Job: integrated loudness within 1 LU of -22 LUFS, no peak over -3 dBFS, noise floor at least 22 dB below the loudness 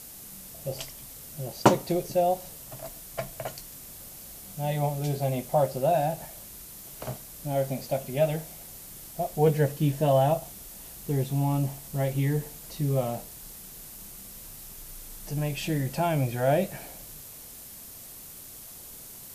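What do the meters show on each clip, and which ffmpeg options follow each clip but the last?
noise floor -45 dBFS; noise floor target -50 dBFS; loudness -28.0 LUFS; peak -4.5 dBFS; loudness target -22.0 LUFS
-> -af "afftdn=nr=6:nf=-45"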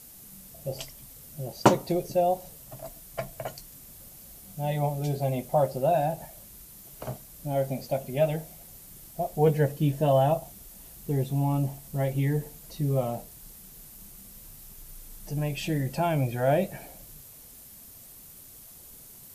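noise floor -49 dBFS; noise floor target -50 dBFS
-> -af "afftdn=nr=6:nf=-49"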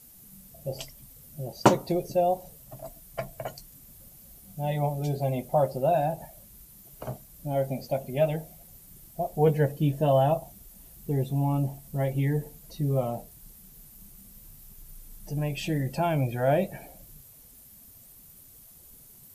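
noise floor -52 dBFS; loudness -28.0 LUFS; peak -4.5 dBFS; loudness target -22.0 LUFS
-> -af "volume=6dB,alimiter=limit=-3dB:level=0:latency=1"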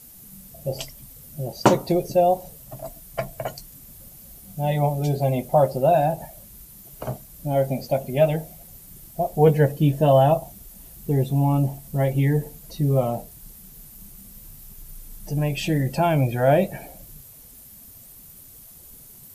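loudness -22.5 LUFS; peak -3.0 dBFS; noise floor -46 dBFS

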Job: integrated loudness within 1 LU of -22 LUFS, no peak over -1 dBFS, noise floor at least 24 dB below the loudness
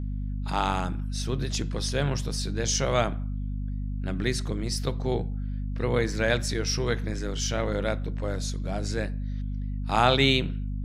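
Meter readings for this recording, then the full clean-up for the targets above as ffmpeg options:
hum 50 Hz; harmonics up to 250 Hz; hum level -28 dBFS; loudness -28.0 LUFS; peak -6.0 dBFS; loudness target -22.0 LUFS
-> -af "bandreject=f=50:t=h:w=6,bandreject=f=100:t=h:w=6,bandreject=f=150:t=h:w=6,bandreject=f=200:t=h:w=6,bandreject=f=250:t=h:w=6"
-af "volume=6dB,alimiter=limit=-1dB:level=0:latency=1"

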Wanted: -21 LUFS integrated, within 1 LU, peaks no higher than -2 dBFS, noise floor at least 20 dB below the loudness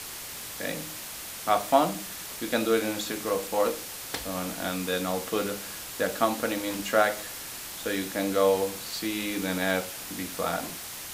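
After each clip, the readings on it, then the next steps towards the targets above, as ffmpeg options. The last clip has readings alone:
noise floor -39 dBFS; noise floor target -49 dBFS; loudness -29.0 LUFS; peak -7.5 dBFS; loudness target -21.0 LUFS
-> -af "afftdn=nr=10:nf=-39"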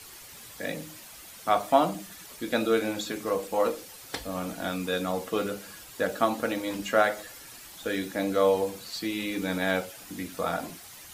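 noise floor -47 dBFS; noise floor target -49 dBFS
-> -af "afftdn=nr=6:nf=-47"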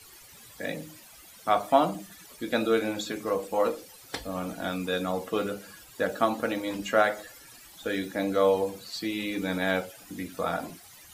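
noise floor -51 dBFS; loudness -29.0 LUFS; peak -7.5 dBFS; loudness target -21.0 LUFS
-> -af "volume=8dB,alimiter=limit=-2dB:level=0:latency=1"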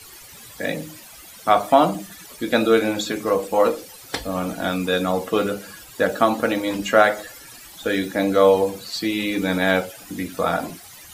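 loudness -21.5 LUFS; peak -2.0 dBFS; noise floor -43 dBFS

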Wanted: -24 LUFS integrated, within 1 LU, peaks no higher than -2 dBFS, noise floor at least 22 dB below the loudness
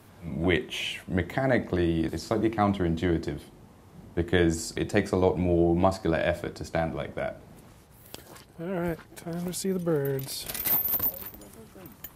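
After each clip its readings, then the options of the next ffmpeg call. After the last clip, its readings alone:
loudness -27.5 LUFS; peak -8.5 dBFS; loudness target -24.0 LUFS
-> -af "volume=3.5dB"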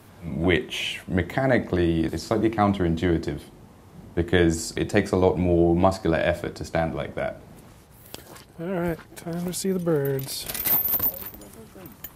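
loudness -24.0 LUFS; peak -5.0 dBFS; noise floor -50 dBFS

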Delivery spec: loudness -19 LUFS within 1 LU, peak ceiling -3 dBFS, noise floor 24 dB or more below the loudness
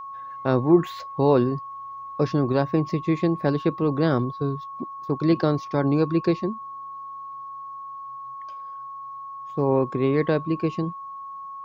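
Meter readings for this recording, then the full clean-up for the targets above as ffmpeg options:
steady tone 1100 Hz; tone level -34 dBFS; loudness -23.5 LUFS; peak -6.5 dBFS; loudness target -19.0 LUFS
-> -af "bandreject=f=1.1k:w=30"
-af "volume=4.5dB,alimiter=limit=-3dB:level=0:latency=1"

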